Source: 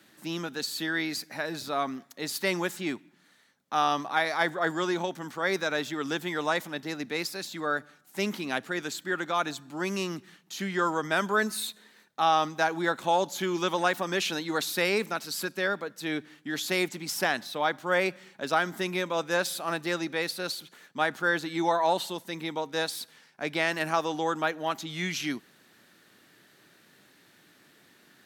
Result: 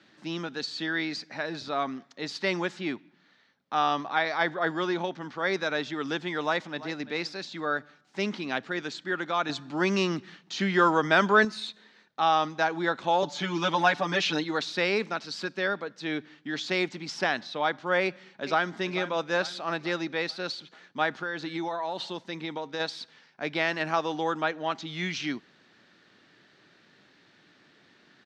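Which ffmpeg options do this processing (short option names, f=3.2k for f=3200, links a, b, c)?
-filter_complex "[0:a]asettb=1/sr,asplit=3[a][b][c];[a]atrim=end=2.794[d];[b]atrim=start=2.79:end=5.39,asetpts=PTS-STARTPTS,afade=t=in:d=0.004:c=qsin,afade=t=out:st=2.596:d=0.004:c=qsin,lowpass=6.2k[e];[c]atrim=start=5.386[f];[d][e]acrossfade=d=0.004:c1=hsin:c2=qsin[g];[g][f]acrossfade=d=0.004:c1=qsin:c2=hsin,asplit=2[h][i];[i]afade=t=in:st=6.41:d=0.01,afade=t=out:st=6.98:d=0.01,aecho=0:1:340|680:0.158489|0.0237734[j];[h][j]amix=inputs=2:normalize=0,asettb=1/sr,asplit=3[k][l][m];[k]atrim=end=9.494[n];[l]atrim=start=9.49:end=11.45,asetpts=PTS-STARTPTS,afade=t=in:d=0.004:c=qsin,afade=t=out:st=1.956:d=0.004:c=qsin,acontrast=38[o];[m]atrim=start=11.446[p];[n][o]acrossfade=d=0.004:c1=hsin:c2=qsin[q];[q][p]acrossfade=d=0.004:c1=qsin:c2=hsin,asettb=1/sr,asplit=3[r][s][t];[r]atrim=end=13.224[u];[s]atrim=start=13.22:end=14.44,asetpts=PTS-STARTPTS,afade=t=in:d=0.004:c=qsin,afade=t=out:st=1.216:d=0.004:c=qsin,aecho=1:1:6.8:0.99,atrim=end_sample=53802[v];[t]atrim=start=14.436[w];[u][v]acrossfade=d=0.004:c1=hsin:c2=qsin[x];[x][w]acrossfade=d=0.004:c1=qsin:c2=hsin,asplit=2[y][z];[z]afade=t=in:st=18.02:d=0.01,afade=t=out:st=18.74:d=0.01,aecho=0:1:440|880|1320|1760|2200:0.223872|0.111936|0.055968|0.027984|0.013992[aa];[y][aa]amix=inputs=2:normalize=0,asplit=3[ab][ac][ad];[ab]afade=t=out:st=21.21:d=0.02[ae];[ac]acompressor=threshold=-28dB:ratio=6:attack=3.2:release=140:knee=1:detection=peak,afade=t=in:st=21.21:d=0.02,afade=t=out:st=22.79:d=0.02[af];[ad]afade=t=in:st=22.79:d=0.02[ag];[ae][af][ag]amix=inputs=3:normalize=0,lowpass=f=5.4k:w=0.5412,lowpass=f=5.4k:w=1.3066"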